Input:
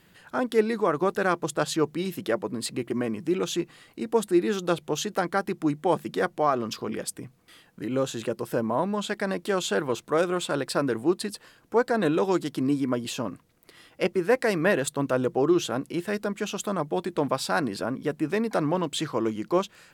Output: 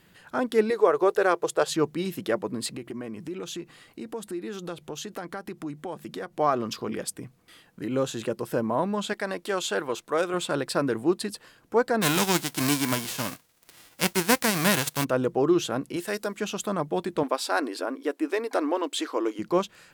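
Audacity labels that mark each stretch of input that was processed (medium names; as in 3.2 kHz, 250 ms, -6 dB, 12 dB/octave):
0.700000	1.700000	resonant low shelf 320 Hz -8.5 dB, Q 3
2.690000	6.390000	compression 3:1, threshold -34 dBFS
9.130000	10.340000	peaking EQ 110 Hz -10 dB 2.6 oct
12.010000	15.030000	formants flattened exponent 0.3
15.960000	16.370000	tone controls bass -9 dB, treble +8 dB
17.230000	19.390000	brick-wall FIR high-pass 250 Hz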